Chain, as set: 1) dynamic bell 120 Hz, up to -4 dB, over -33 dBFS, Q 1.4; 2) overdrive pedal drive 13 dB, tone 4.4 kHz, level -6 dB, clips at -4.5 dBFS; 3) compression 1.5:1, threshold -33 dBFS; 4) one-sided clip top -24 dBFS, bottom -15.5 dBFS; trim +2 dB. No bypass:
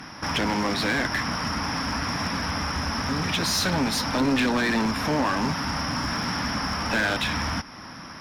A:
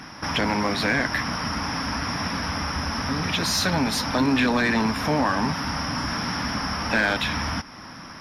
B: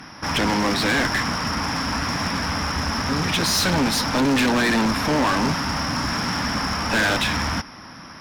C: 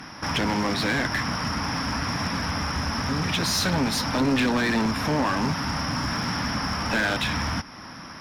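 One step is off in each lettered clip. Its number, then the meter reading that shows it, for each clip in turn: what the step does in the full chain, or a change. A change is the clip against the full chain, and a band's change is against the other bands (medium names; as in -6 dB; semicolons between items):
4, distortion -12 dB; 3, mean gain reduction 4.5 dB; 1, 125 Hz band +2.5 dB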